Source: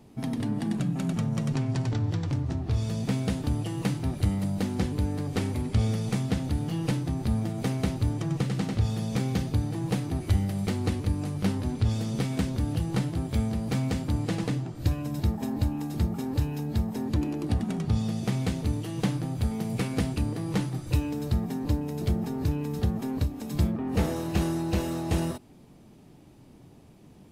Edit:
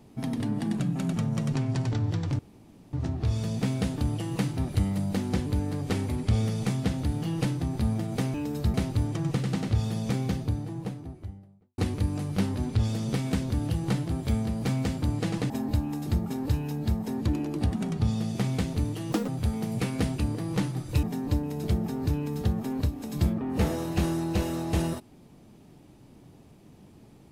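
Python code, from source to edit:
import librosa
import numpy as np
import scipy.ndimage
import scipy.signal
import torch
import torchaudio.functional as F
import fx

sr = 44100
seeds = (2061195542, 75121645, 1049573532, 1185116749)

y = fx.studio_fade_out(x, sr, start_s=8.97, length_s=1.87)
y = fx.edit(y, sr, fx.insert_room_tone(at_s=2.39, length_s=0.54),
    fx.cut(start_s=14.56, length_s=0.82),
    fx.speed_span(start_s=19.0, length_s=0.26, speed=1.61),
    fx.move(start_s=21.01, length_s=0.4, to_s=7.8), tone=tone)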